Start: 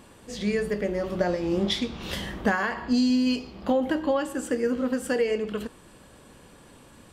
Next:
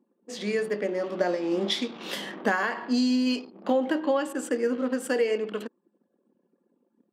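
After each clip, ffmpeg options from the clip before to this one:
-af "anlmdn=0.251,highpass=f=230:w=0.5412,highpass=f=230:w=1.3066"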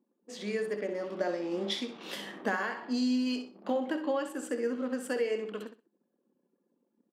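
-af "aecho=1:1:64|128|192:0.316|0.0632|0.0126,volume=0.473"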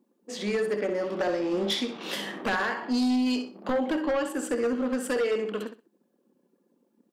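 -af "aeval=exprs='0.141*sin(PI/2*2.51*val(0)/0.141)':c=same,volume=0.596"

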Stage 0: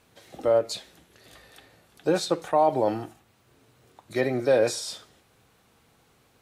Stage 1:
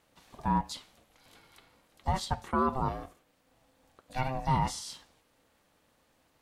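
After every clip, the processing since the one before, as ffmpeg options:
-af "aeval=exprs='val(0)*sin(2*PI*390*n/s)':c=same,volume=0.631"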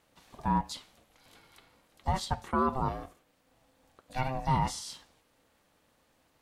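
-af anull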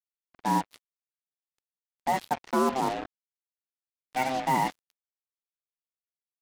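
-af "highpass=f=200:w=0.5412,highpass=f=200:w=1.3066,equalizer=f=310:t=q:w=4:g=8,equalizer=f=750:t=q:w=4:g=5,equalizer=f=1200:t=q:w=4:g=-7,equalizer=f=2000:t=q:w=4:g=6,lowpass=f=3400:w=0.5412,lowpass=f=3400:w=1.3066,acrusher=bits=5:mix=0:aa=0.5,volume=1.5"

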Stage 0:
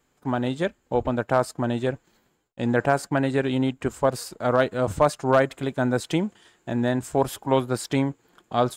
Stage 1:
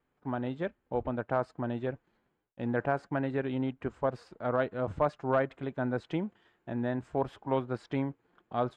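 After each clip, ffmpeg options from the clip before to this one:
-af "lowpass=2400,volume=0.376"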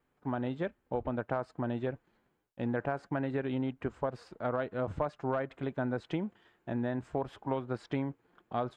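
-af "acompressor=threshold=0.0316:ratio=6,volume=1.19"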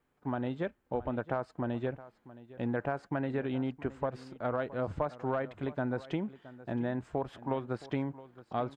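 -af "aecho=1:1:669:0.133"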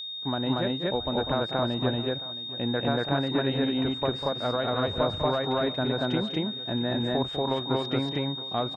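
-af "aecho=1:1:198.3|233.2:0.355|1,aeval=exprs='val(0)+0.0126*sin(2*PI*3700*n/s)':c=same,volume=1.58"

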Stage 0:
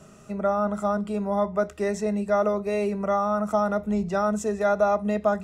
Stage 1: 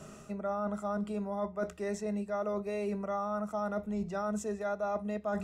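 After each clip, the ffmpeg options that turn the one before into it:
-af "bandreject=f=60:t=h:w=6,bandreject=f=120:t=h:w=6,bandreject=f=180:t=h:w=6,areverse,acompressor=threshold=0.0224:ratio=6,areverse,volume=1.12"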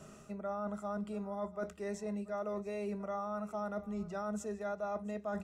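-af "aecho=1:1:684:0.106,volume=0.596"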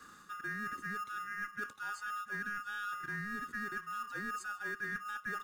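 -filter_complex "[0:a]afftfilt=real='real(if(lt(b,960),b+48*(1-2*mod(floor(b/48),2)),b),0)':imag='imag(if(lt(b,960),b+48*(1-2*mod(floor(b/48),2)),b),0)':win_size=2048:overlap=0.75,acrossover=split=160|980|3200[s0][s1][s2][s3];[s1]acrusher=samples=11:mix=1:aa=0.000001[s4];[s0][s4][s2][s3]amix=inputs=4:normalize=0,volume=0.891"

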